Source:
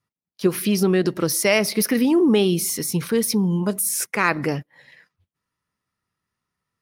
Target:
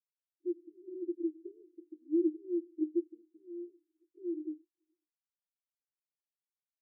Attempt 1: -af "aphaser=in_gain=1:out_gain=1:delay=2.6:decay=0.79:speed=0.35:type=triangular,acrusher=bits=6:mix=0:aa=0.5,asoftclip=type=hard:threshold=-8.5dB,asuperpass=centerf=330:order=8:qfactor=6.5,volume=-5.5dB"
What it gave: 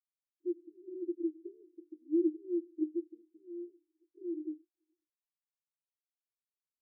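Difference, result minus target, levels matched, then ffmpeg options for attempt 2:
hard clip: distortion +28 dB
-af "aphaser=in_gain=1:out_gain=1:delay=2.6:decay=0.79:speed=0.35:type=triangular,acrusher=bits=6:mix=0:aa=0.5,asoftclip=type=hard:threshold=-2dB,asuperpass=centerf=330:order=8:qfactor=6.5,volume=-5.5dB"

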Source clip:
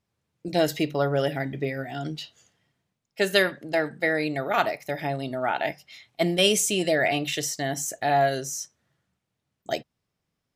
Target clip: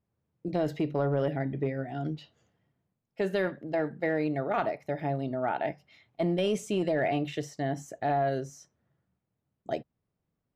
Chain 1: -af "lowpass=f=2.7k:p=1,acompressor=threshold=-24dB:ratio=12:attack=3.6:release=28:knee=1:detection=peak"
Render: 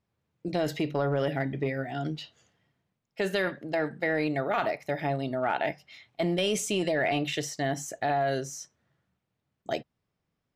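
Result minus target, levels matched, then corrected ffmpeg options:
2000 Hz band +4.5 dB
-af "lowpass=f=700:p=1,acompressor=threshold=-24dB:ratio=12:attack=3.6:release=28:knee=1:detection=peak"

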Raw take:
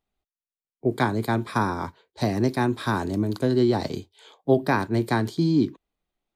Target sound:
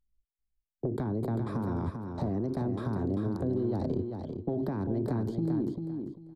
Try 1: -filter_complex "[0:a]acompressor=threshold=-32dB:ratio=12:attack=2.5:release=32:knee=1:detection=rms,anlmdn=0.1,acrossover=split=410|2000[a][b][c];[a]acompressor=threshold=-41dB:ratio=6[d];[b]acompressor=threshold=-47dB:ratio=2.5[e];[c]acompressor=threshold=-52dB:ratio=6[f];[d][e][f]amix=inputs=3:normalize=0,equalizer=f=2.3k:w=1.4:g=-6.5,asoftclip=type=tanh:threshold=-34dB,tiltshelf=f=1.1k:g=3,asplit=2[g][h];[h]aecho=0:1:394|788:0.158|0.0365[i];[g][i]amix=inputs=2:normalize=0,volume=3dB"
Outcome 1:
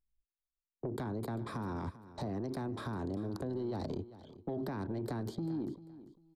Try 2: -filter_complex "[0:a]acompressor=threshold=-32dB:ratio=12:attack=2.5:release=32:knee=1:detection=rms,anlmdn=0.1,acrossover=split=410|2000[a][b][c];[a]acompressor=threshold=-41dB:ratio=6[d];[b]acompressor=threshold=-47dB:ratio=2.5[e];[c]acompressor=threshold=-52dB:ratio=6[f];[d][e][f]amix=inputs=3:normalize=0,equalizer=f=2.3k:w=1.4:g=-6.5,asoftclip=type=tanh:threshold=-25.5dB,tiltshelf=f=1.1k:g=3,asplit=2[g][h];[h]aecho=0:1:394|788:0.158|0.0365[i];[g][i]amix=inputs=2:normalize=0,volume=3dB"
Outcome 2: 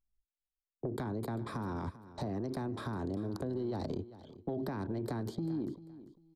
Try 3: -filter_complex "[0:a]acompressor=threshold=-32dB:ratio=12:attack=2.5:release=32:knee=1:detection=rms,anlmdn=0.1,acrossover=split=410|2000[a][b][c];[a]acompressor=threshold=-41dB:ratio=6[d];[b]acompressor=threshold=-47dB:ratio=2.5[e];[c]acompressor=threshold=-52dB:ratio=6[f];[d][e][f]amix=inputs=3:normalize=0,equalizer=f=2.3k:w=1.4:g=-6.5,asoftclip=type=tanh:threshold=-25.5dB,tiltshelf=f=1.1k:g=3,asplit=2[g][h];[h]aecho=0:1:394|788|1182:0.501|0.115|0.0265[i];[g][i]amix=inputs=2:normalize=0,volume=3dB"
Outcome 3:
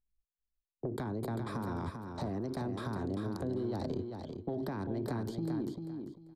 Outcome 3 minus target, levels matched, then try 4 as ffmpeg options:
1000 Hz band +4.0 dB
-filter_complex "[0:a]acompressor=threshold=-32dB:ratio=12:attack=2.5:release=32:knee=1:detection=rms,anlmdn=0.1,acrossover=split=410|2000[a][b][c];[a]acompressor=threshold=-41dB:ratio=6[d];[b]acompressor=threshold=-47dB:ratio=2.5[e];[c]acompressor=threshold=-52dB:ratio=6[f];[d][e][f]amix=inputs=3:normalize=0,equalizer=f=2.3k:w=1.4:g=-6.5,asoftclip=type=tanh:threshold=-25.5dB,tiltshelf=f=1.1k:g=9.5,asplit=2[g][h];[h]aecho=0:1:394|788|1182:0.501|0.115|0.0265[i];[g][i]amix=inputs=2:normalize=0,volume=3dB"

